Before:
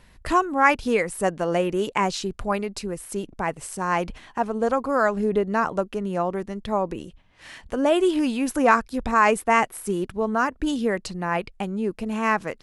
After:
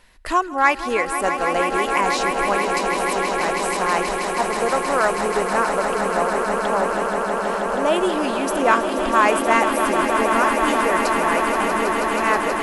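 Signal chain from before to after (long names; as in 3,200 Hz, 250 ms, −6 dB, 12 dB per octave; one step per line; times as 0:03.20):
parametric band 110 Hz −13.5 dB 2.6 octaves
in parallel at −9 dB: hard clipping −14 dBFS, distortion −14 dB
on the sum: echo that builds up and dies away 160 ms, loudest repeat 8, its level −9 dB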